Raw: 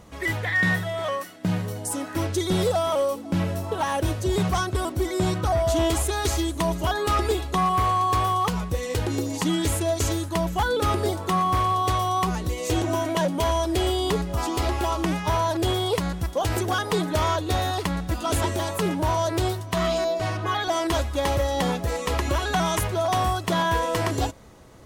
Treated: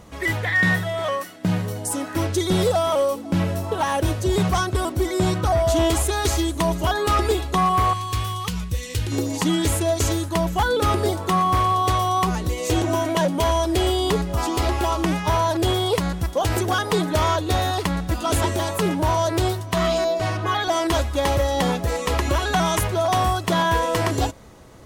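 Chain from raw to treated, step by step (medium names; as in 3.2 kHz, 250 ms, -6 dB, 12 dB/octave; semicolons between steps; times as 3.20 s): 7.93–9.12 s: FFT filter 100 Hz 0 dB, 750 Hz -15 dB, 2.8 kHz 0 dB; trim +3 dB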